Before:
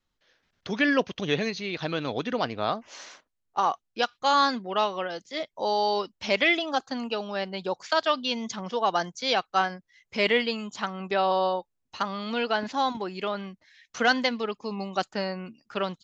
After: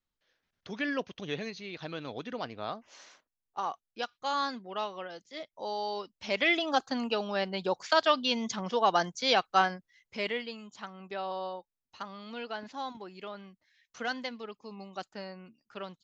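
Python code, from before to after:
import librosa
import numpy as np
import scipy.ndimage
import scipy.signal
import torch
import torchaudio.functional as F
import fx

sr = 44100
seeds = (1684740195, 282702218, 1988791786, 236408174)

y = fx.gain(x, sr, db=fx.line((6.14, -9.5), (6.69, -0.5), (9.68, -0.5), (10.41, -12.0)))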